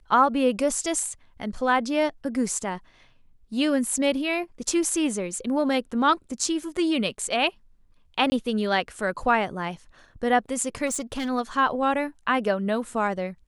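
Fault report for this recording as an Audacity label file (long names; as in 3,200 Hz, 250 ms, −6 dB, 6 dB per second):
8.300000	8.320000	drop-out 20 ms
10.860000	11.300000	clipping −24.5 dBFS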